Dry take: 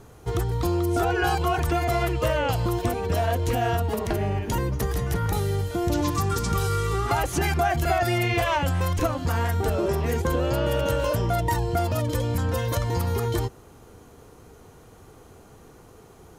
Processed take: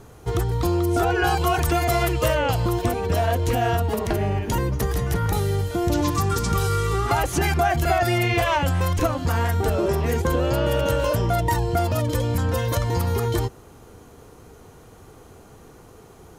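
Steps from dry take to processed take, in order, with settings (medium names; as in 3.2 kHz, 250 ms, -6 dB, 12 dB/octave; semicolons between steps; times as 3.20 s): 1.38–2.35 s: treble shelf 4.2 kHz +7 dB; trim +2.5 dB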